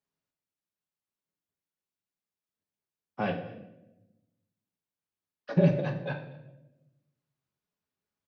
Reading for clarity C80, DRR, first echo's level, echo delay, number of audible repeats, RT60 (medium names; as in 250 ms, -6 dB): 11.0 dB, 2.5 dB, -22.5 dB, 237 ms, 1, 0.95 s